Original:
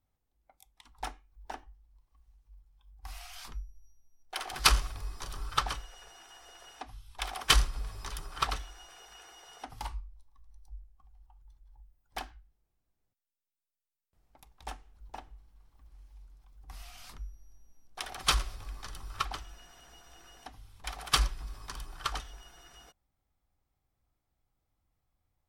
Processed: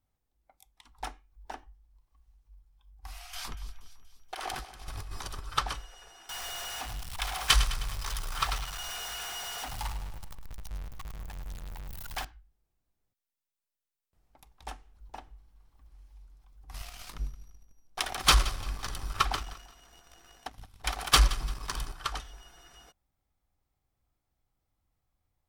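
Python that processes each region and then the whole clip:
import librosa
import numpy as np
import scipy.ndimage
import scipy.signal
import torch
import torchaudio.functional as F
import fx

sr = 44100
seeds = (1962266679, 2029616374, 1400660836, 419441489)

y = fx.chain(x, sr, fx.over_compress(threshold_db=-42.0, ratio=-1.0),
    fx.echo_split(split_hz=2800.0, low_ms=169, high_ms=238, feedback_pct=52, wet_db=-14.0), at=(3.33, 5.47))
y = fx.chain(y, sr, fx.zero_step(step_db=-33.5),
    fx.peak_eq(hz=310.0, db=-10.0, octaves=1.7),
    fx.echo_feedback(ms=104, feedback_pct=58, wet_db=-11.5), at=(6.29, 12.25))
y = fx.chain(y, sr, fx.leveller(passes=2),
    fx.echo_feedback(ms=172, feedback_pct=32, wet_db=-17.0), at=(16.74, 21.93))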